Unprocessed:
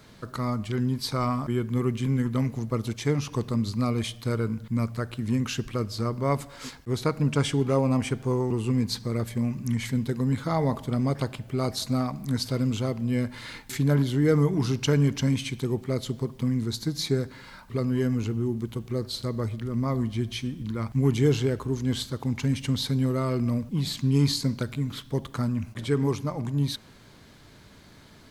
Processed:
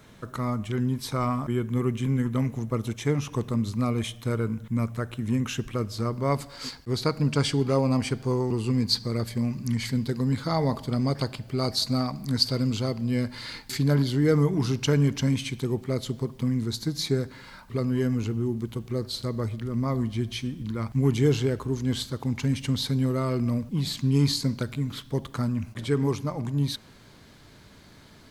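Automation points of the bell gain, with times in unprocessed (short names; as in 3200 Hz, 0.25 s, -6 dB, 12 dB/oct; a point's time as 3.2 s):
bell 4600 Hz 0.26 oct
5.58 s -9.5 dB
6.23 s +1.5 dB
6.52 s +11.5 dB
14.07 s +11.5 dB
14.5 s +1 dB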